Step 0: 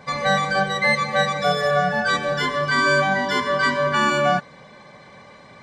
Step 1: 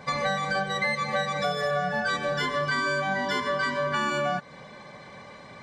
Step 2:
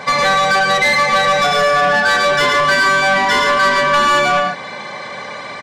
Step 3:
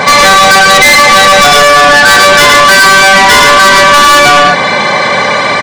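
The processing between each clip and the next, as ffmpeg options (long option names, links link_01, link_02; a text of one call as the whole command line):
ffmpeg -i in.wav -af "acompressor=threshold=-24dB:ratio=6" out.wav
ffmpeg -i in.wav -filter_complex "[0:a]aecho=1:1:107.9|145.8:0.562|0.398,asplit=2[link_01][link_02];[link_02]highpass=frequency=720:poles=1,volume=17dB,asoftclip=type=tanh:threshold=-12.5dB[link_03];[link_01][link_03]amix=inputs=2:normalize=0,lowpass=frequency=7200:poles=1,volume=-6dB,volume=6.5dB" out.wav
ffmpeg -i in.wav -af "apsyclip=21.5dB,volume=-1.5dB" out.wav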